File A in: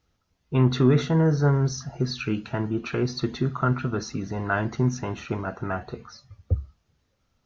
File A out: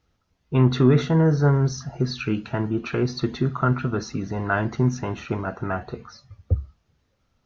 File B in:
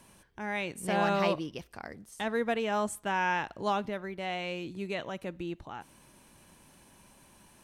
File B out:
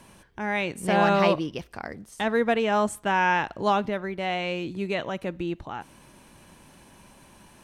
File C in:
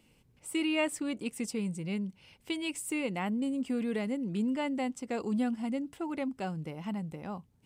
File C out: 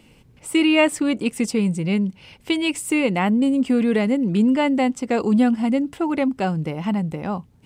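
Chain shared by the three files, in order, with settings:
treble shelf 6.1 kHz -6.5 dB; peak normalisation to -6 dBFS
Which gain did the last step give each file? +2.0 dB, +7.0 dB, +13.5 dB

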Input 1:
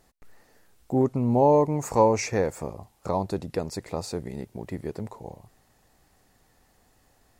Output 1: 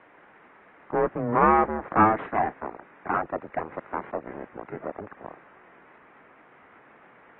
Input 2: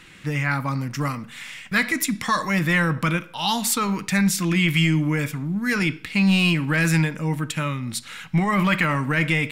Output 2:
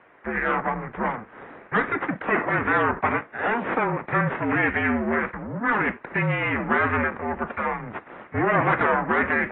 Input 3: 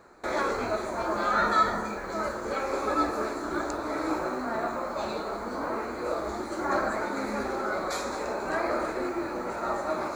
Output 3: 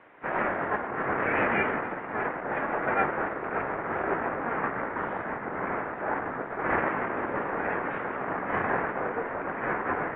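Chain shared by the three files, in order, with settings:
crossover distortion -44.5 dBFS; added noise violet -48 dBFS; full-wave rectifier; mistuned SSB -230 Hz 450–2200 Hz; trim +6.5 dB; AAC 16 kbps 24 kHz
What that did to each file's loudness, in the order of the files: 0.0 LU, -2.0 LU, 0.0 LU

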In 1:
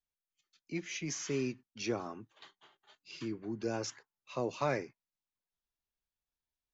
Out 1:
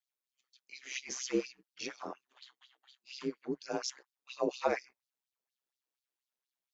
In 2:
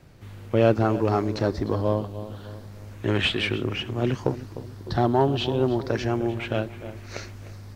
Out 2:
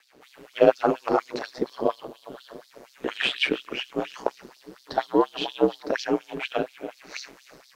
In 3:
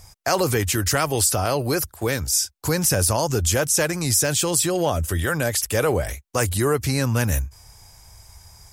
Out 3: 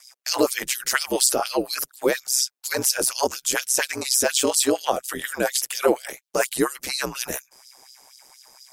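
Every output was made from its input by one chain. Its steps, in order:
LFO high-pass sine 4.2 Hz 310–4600 Hz; ring modulator 65 Hz; trim +1.5 dB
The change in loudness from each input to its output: 0.0 LU, -1.5 LU, -1.5 LU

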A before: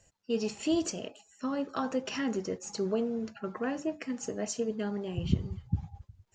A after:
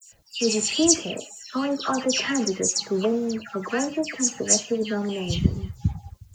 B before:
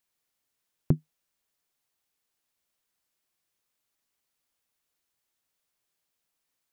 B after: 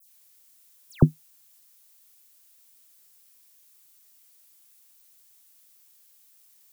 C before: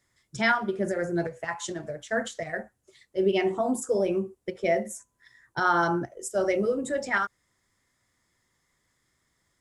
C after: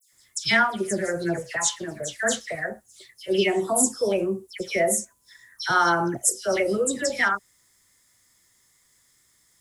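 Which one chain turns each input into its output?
pre-emphasis filter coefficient 0.8; phase dispersion lows, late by 123 ms, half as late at 2.8 kHz; normalise loudness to -24 LUFS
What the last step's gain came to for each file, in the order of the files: +21.0 dB, +21.0 dB, +15.0 dB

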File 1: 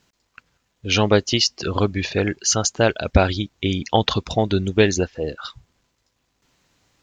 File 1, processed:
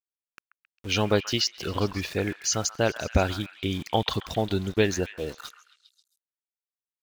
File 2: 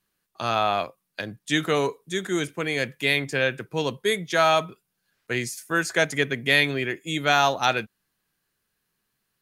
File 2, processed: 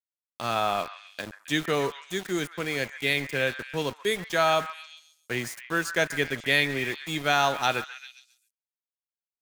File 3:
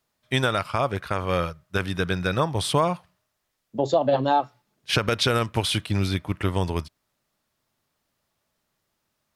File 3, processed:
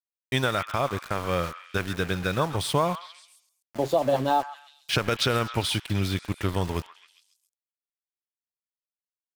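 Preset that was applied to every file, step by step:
small samples zeroed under -32.5 dBFS; repeats whose band climbs or falls 134 ms, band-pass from 1.4 kHz, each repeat 0.7 oct, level -9.5 dB; normalise loudness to -27 LUFS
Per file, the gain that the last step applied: -6.5 dB, -3.0 dB, -2.5 dB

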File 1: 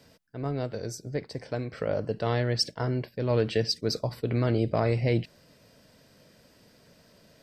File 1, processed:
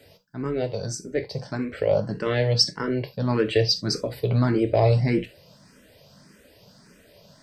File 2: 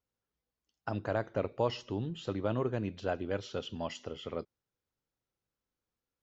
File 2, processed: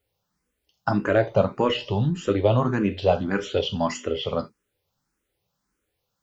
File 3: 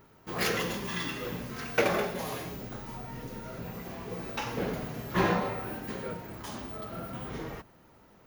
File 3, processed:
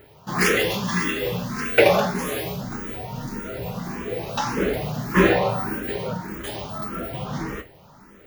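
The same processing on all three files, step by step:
gated-style reverb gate 100 ms falling, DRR 7 dB; barber-pole phaser +1.7 Hz; normalise loudness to -24 LUFS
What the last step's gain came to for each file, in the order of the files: +7.0 dB, +14.5 dB, +11.5 dB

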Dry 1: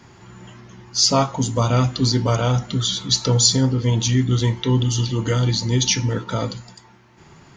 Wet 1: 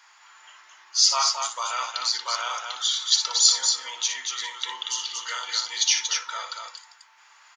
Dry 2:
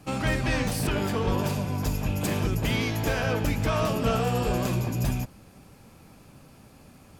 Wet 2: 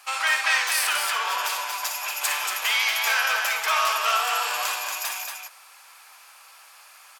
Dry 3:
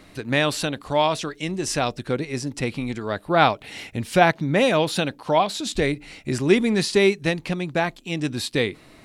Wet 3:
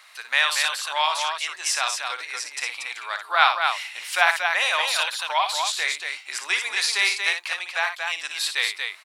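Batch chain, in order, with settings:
high-pass 980 Hz 24 dB/octave; on a send: loudspeakers at several distances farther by 20 m -8 dB, 80 m -5 dB; on the sum: normalise loudness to -23 LUFS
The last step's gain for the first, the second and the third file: -1.5 dB, +9.0 dB, +3.0 dB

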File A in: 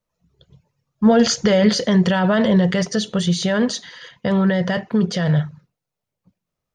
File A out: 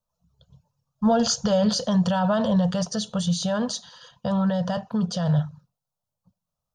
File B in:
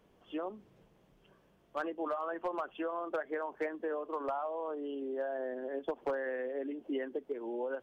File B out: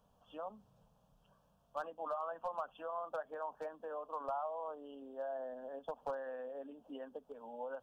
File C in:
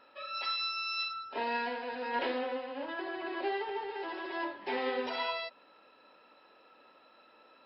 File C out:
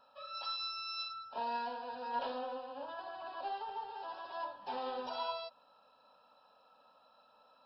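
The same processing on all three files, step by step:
static phaser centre 860 Hz, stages 4; trim -1.5 dB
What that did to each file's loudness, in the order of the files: -5.5 LU, -6.0 LU, -5.5 LU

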